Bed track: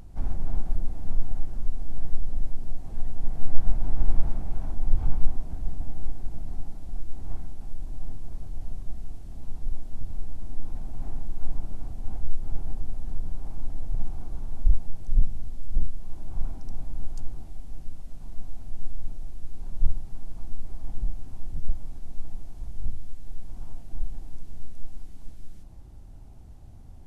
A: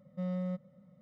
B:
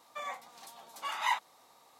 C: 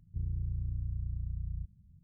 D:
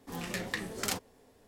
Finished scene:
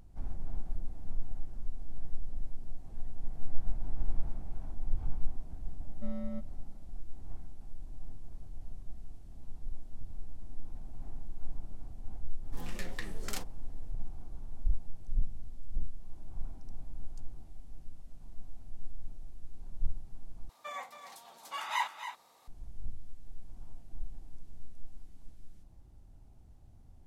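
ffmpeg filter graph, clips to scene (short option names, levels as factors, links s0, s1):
-filter_complex "[0:a]volume=0.316[s0];[1:a]afreqshift=35[s1];[2:a]aecho=1:1:275:0.316[s2];[s0]asplit=2[s3][s4];[s3]atrim=end=20.494[s5];[s2]atrim=end=1.99,asetpts=PTS-STARTPTS,volume=0.794[s6];[s4]atrim=start=22.476[s7];[s1]atrim=end=1.01,asetpts=PTS-STARTPTS,volume=0.531,afade=t=in:d=0.004:c=hsin,afade=t=out:st=1.006:d=0.004:c=hsin,adelay=5840[s8];[4:a]atrim=end=1.47,asetpts=PTS-STARTPTS,volume=0.422,afade=t=in:d=0.004:c=hsin,afade=t=out:st=1.466:d=0.004:c=hsin,adelay=12450[s9];[s5][s6]acrossfade=d=0.004:c1=hsin:c2=hsin[s10];[s10][s7]acrossfade=d=0.004:c1=hsin:c2=hsin[s11];[s11][s8][s9]amix=inputs=3:normalize=0"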